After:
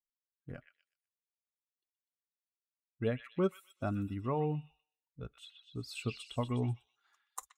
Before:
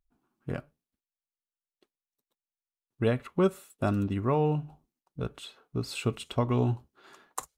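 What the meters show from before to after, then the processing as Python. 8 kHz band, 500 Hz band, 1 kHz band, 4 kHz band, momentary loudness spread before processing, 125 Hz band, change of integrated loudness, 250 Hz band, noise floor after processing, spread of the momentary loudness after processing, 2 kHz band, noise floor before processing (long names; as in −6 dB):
can't be measured, −7.5 dB, −7.5 dB, −6.5 dB, 14 LU, −7.5 dB, −6.5 dB, −7.5 dB, below −85 dBFS, 16 LU, −7.0 dB, below −85 dBFS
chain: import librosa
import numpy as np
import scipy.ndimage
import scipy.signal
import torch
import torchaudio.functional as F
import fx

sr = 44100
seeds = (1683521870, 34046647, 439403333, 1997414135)

y = fx.bin_expand(x, sr, power=1.5)
y = fx.noise_reduce_blind(y, sr, reduce_db=13)
y = fx.echo_stepped(y, sr, ms=124, hz=2500.0, octaves=0.7, feedback_pct=70, wet_db=-4.0)
y = y * 10.0 ** (-5.5 / 20.0)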